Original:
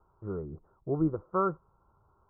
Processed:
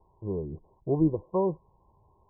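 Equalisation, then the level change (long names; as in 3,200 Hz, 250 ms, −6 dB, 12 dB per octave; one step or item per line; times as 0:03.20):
linear-phase brick-wall low-pass 1,100 Hz
+4.0 dB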